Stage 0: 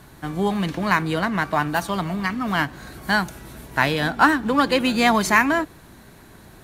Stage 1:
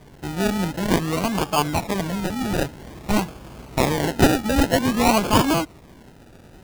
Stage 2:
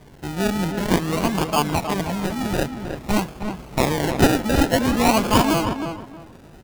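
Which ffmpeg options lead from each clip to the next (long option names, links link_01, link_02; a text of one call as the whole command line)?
ffmpeg -i in.wav -af "acrusher=samples=32:mix=1:aa=0.000001:lfo=1:lforange=19.2:lforate=0.51" out.wav
ffmpeg -i in.wav -filter_complex "[0:a]asplit=2[link_01][link_02];[link_02]adelay=315,lowpass=frequency=2400:poles=1,volume=-7dB,asplit=2[link_03][link_04];[link_04]adelay=315,lowpass=frequency=2400:poles=1,volume=0.23,asplit=2[link_05][link_06];[link_06]adelay=315,lowpass=frequency=2400:poles=1,volume=0.23[link_07];[link_01][link_03][link_05][link_07]amix=inputs=4:normalize=0" out.wav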